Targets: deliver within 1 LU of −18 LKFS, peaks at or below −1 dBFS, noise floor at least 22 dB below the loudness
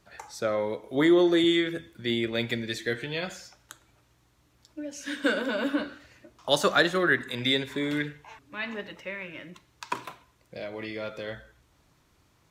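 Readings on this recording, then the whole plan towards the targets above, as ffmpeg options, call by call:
integrated loudness −27.5 LKFS; sample peak −7.5 dBFS; target loudness −18.0 LKFS
→ -af "volume=9.5dB,alimiter=limit=-1dB:level=0:latency=1"

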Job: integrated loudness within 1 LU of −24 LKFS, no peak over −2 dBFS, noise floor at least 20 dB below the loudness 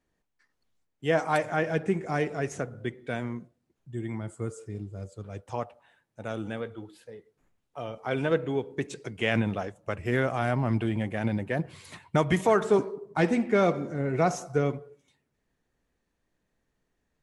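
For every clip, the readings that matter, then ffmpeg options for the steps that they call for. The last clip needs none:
integrated loudness −29.0 LKFS; sample peak −9.5 dBFS; target loudness −24.0 LKFS
→ -af "volume=5dB"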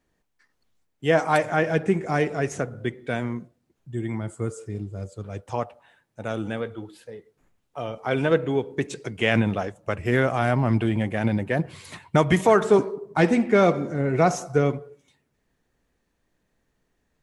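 integrated loudness −24.0 LKFS; sample peak −4.5 dBFS; background noise floor −74 dBFS

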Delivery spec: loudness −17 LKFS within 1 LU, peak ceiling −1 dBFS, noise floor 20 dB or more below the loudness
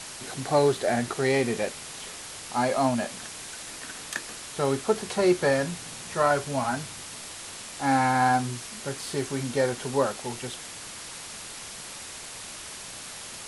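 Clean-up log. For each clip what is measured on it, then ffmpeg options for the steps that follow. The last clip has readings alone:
background noise floor −41 dBFS; target noise floor −49 dBFS; integrated loudness −28.5 LKFS; sample peak −10.0 dBFS; target loudness −17.0 LKFS
→ -af "afftdn=noise_reduction=8:noise_floor=-41"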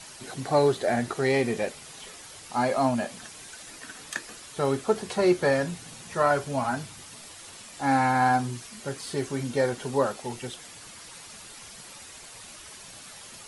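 background noise floor −46 dBFS; target noise floor −47 dBFS
→ -af "afftdn=noise_reduction=6:noise_floor=-46"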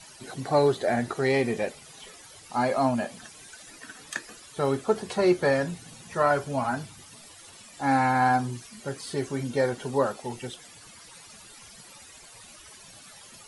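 background noise floor −49 dBFS; integrated loudness −27.0 LKFS; sample peak −10.0 dBFS; target loudness −17.0 LKFS
→ -af "volume=10dB,alimiter=limit=-1dB:level=0:latency=1"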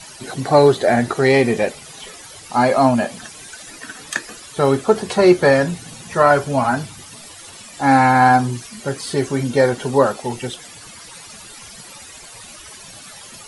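integrated loudness −17.0 LKFS; sample peak −1.0 dBFS; background noise floor −39 dBFS

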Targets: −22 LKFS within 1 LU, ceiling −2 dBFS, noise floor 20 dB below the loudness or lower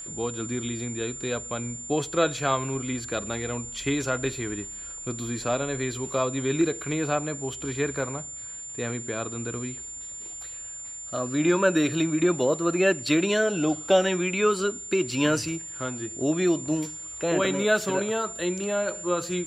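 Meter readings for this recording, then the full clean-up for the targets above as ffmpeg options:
interfering tone 7,200 Hz; level of the tone −36 dBFS; integrated loudness −27.0 LKFS; sample peak −8.5 dBFS; target loudness −22.0 LKFS
→ -af "bandreject=frequency=7200:width=30"
-af "volume=5dB"

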